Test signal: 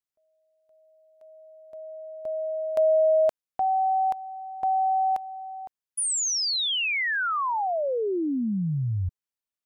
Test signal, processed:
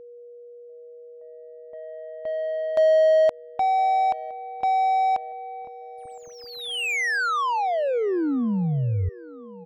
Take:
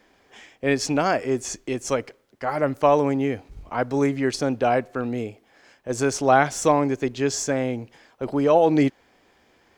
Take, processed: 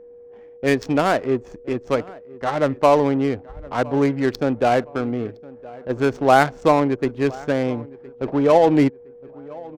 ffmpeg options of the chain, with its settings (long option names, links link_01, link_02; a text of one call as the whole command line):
ffmpeg -i in.wav -filter_complex "[0:a]adynamicsmooth=sensitivity=2.5:basefreq=570,asplit=2[link_01][link_02];[link_02]adelay=1014,lowpass=frequency=2000:poles=1,volume=-21dB,asplit=2[link_03][link_04];[link_04]adelay=1014,lowpass=frequency=2000:poles=1,volume=0.38,asplit=2[link_05][link_06];[link_06]adelay=1014,lowpass=frequency=2000:poles=1,volume=0.38[link_07];[link_01][link_03][link_05][link_07]amix=inputs=4:normalize=0,aeval=exprs='val(0)+0.00631*sin(2*PI*480*n/s)':channel_layout=same,volume=3dB" out.wav